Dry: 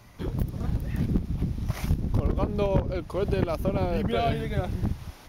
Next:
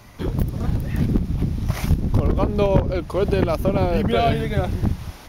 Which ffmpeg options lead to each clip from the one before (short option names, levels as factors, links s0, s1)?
-af "bandreject=f=60:t=h:w=6,bandreject=f=120:t=h:w=6,bandreject=f=180:t=h:w=6,volume=2.24"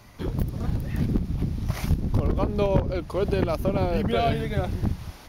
-af "equalizer=f=4500:w=6.9:g=2.5,volume=0.596"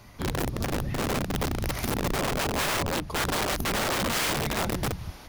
-af "aeval=exprs='(mod(12.6*val(0)+1,2)-1)/12.6':c=same"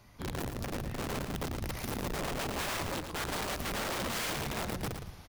-af "aecho=1:1:113|226|339:0.422|0.0928|0.0204,volume=0.376"